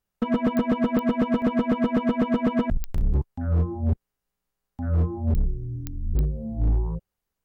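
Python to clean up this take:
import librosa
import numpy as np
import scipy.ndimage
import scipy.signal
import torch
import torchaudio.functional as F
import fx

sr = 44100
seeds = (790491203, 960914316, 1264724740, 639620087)

y = fx.fix_declip(x, sr, threshold_db=-16.5)
y = fx.fix_declick_ar(y, sr, threshold=10.0)
y = fx.fix_interpolate(y, sr, at_s=(1.42, 2.98, 4.17), length_ms=1.1)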